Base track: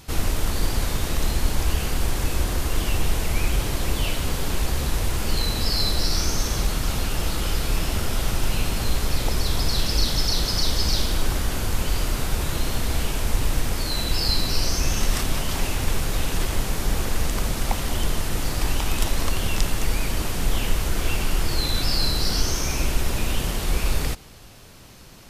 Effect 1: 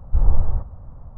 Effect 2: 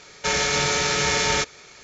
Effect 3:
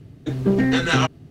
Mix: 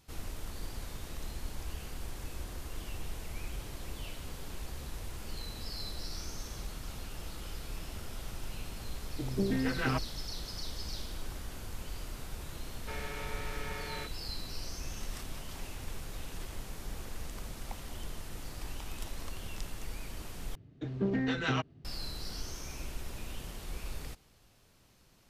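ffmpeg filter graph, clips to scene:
-filter_complex "[3:a]asplit=2[a][b];[0:a]volume=-18dB[c];[a]afwtdn=0.0562[d];[2:a]lowpass=2.6k[e];[b]lowpass=4.8k[f];[c]asplit=2[g][h];[g]atrim=end=20.554[i];[f]atrim=end=1.3,asetpts=PTS-STARTPTS,volume=-12.5dB[j];[h]atrim=start=21.846[k];[d]atrim=end=1.3,asetpts=PTS-STARTPTS,volume=-12.5dB,afade=t=in:d=0.004:c=hsin,afade=t=out:st=1.296:d=0.004:c=hsin,adelay=8920[l];[e]atrim=end=1.83,asetpts=PTS-STARTPTS,volume=-18dB,afade=t=in:d=0.004:c=hsin,afade=t=out:st=1.826:d=0.004:c=hsin,adelay=12630[m];[i][j]acrossfade=d=0.004:c1=hsin:c2=hsin[n];[n][k]acrossfade=d=0.004:c1=hsin:c2=hsin[o];[o][l][m]amix=inputs=3:normalize=0"

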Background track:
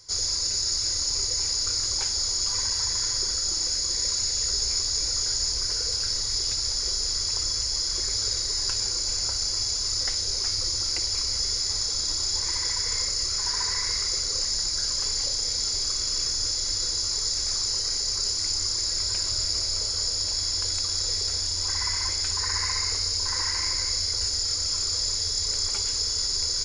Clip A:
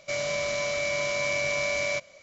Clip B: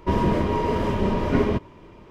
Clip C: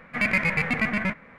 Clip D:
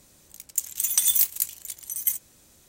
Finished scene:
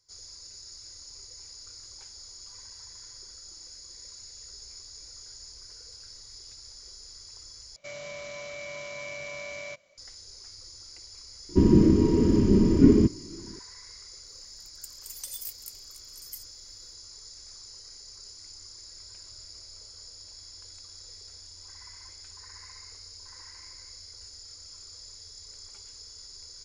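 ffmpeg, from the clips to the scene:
-filter_complex "[0:a]volume=-20dB[a];[2:a]lowshelf=f=460:t=q:w=3:g=12.5[b];[a]asplit=2[c][d];[c]atrim=end=7.764[e];[1:a]atrim=end=2.22,asetpts=PTS-STARTPTS,volume=-11dB[f];[d]atrim=start=9.976[g];[b]atrim=end=2.1,asetpts=PTS-STARTPTS,volume=-11.5dB,afade=t=in:d=0.004:c=hsin,afade=t=out:st=2.096:d=0.004:c=hsin,adelay=11490[h];[4:a]atrim=end=2.68,asetpts=PTS-STARTPTS,volume=-18dB,afade=t=in:d=0.004:c=hsin,afade=t=out:st=2.676:d=0.004:c=hsin,adelay=14260[i];[e][f]acrossfade=d=0.004:c1=hsin:c2=hsin[j];[j][g]acrossfade=d=0.004:c1=hsin:c2=hsin[k];[k][h][i]amix=inputs=3:normalize=0"

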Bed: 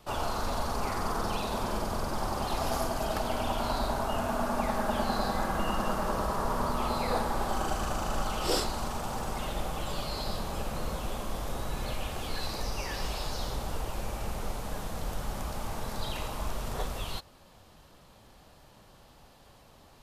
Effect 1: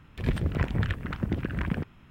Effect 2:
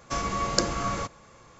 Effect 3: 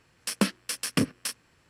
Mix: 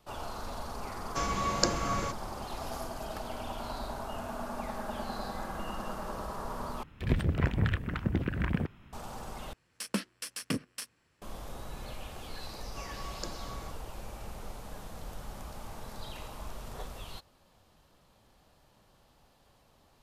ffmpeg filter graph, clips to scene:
-filter_complex "[2:a]asplit=2[a][b];[0:a]volume=-8dB,asplit=3[c][d][e];[c]atrim=end=6.834[f];[1:a]atrim=end=2.1,asetpts=PTS-STARTPTS,volume=-1dB[g];[d]atrim=start=8.926:end=9.534[h];[3:a]atrim=end=1.69,asetpts=PTS-STARTPTS,volume=-8dB[i];[e]atrim=start=11.216[j];[a]atrim=end=1.59,asetpts=PTS-STARTPTS,volume=-3dB,afade=t=in:d=0.004:c=hsin,afade=t=out:st=1.586:d=0.004:c=hsin,adelay=1050[k];[b]atrim=end=1.59,asetpts=PTS-STARTPTS,volume=-17dB,afade=t=in:d=0.004:c=hsin,afade=t=out:st=1.586:d=0.004:c=hsin,adelay=12650[l];[f][g]acrossfade=d=0.004:c1=hsin:c2=hsin[m];[m][h]acrossfade=d=0.004:c1=hsin:c2=hsin[n];[n][i]acrossfade=d=0.004:c1=hsin:c2=hsin[o];[o][j]acrossfade=d=0.004:c1=hsin:c2=hsin[p];[p][k][l]amix=inputs=3:normalize=0"

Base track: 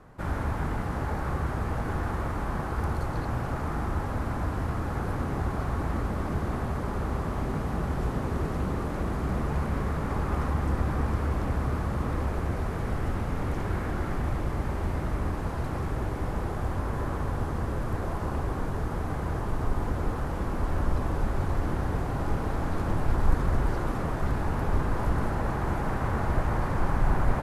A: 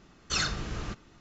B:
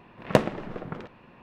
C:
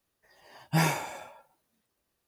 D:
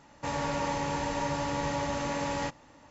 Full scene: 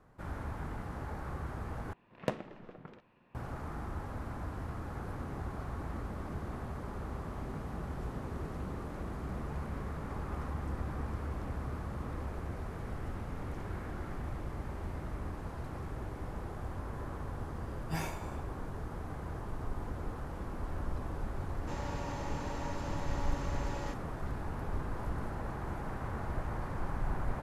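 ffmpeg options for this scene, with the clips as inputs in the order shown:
-filter_complex "[0:a]volume=-10.5dB,asplit=2[a][b];[a]atrim=end=1.934[c];[2:a]atrim=end=1.42,asetpts=PTS-STARTPTS,volume=-14dB[d];[b]atrim=start=3.346[e];[3:a]atrim=end=2.27,asetpts=PTS-STARTPTS,volume=-13dB,afade=t=in:d=0.004:c=hsin,afade=t=out:st=2.266:d=0.004:c=hsin,adelay=17170[f];[4:a]atrim=end=2.9,asetpts=PTS-STARTPTS,volume=-11.5dB,afade=t=in:d=0.004:c=hsin,afade=t=out:st=2.896:d=0.004:c=hsin,adelay=21440[g];[c][d]acrossfade=d=0.004:c1=hsin:c2=hsin[h];[h][e]acrossfade=d=0.004:c1=hsin:c2=hsin[i];[i][f][g]amix=inputs=3:normalize=0"

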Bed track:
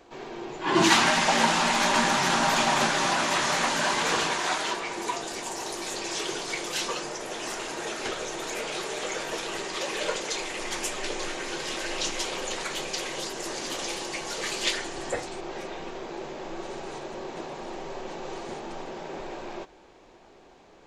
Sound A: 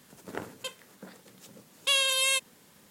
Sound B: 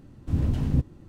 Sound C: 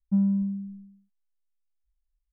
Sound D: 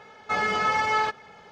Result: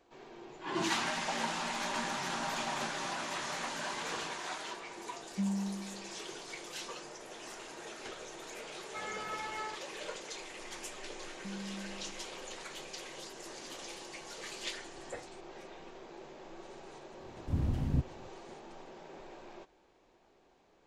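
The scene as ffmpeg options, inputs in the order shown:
-filter_complex "[3:a]asplit=2[a][b];[0:a]volume=-13dB[c];[b]acompressor=threshold=-26dB:ratio=6:attack=3.2:release=140:knee=1:detection=peak[d];[a]atrim=end=2.32,asetpts=PTS-STARTPTS,volume=-10.5dB,afade=t=in:d=0.004:c=hsin,afade=t=out:st=2.316:d=0.004:c=hsin,adelay=5260[e];[4:a]atrim=end=1.51,asetpts=PTS-STARTPTS,volume=-17dB,afade=t=in:d=0.004:c=hsin,afade=t=out:st=1.506:d=0.004:c=hsin,adelay=8650[f];[d]atrim=end=2.32,asetpts=PTS-STARTPTS,volume=-15dB,afade=t=in:d=0.004:c=hsin,afade=t=out:st=2.316:d=0.004:c=hsin,adelay=11330[g];[2:a]atrim=end=1.08,asetpts=PTS-STARTPTS,volume=-7.5dB,afade=t=in:d=0.004:c=hsin,afade=t=out:st=1.076:d=0.004:c=hsin,adelay=17200[h];[c][e][f][g][h]amix=inputs=5:normalize=0"

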